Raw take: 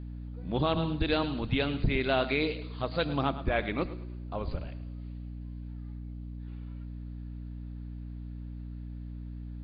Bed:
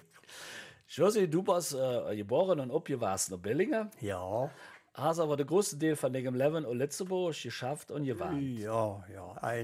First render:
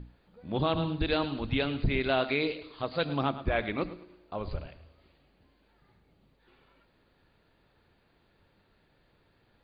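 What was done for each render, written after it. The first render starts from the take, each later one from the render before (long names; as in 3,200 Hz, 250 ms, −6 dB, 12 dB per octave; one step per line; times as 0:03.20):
mains-hum notches 60/120/180/240/300 Hz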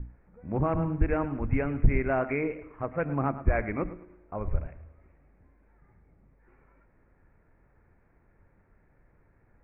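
Butterworth low-pass 2,300 Hz 72 dB per octave
low-shelf EQ 91 Hz +11.5 dB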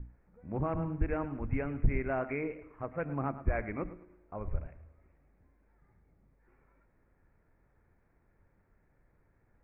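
level −6 dB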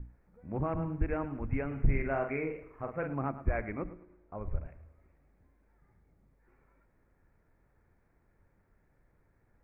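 0:01.67–0:03.14: double-tracking delay 44 ms −5 dB
0:03.75–0:04.65: high-frequency loss of the air 250 metres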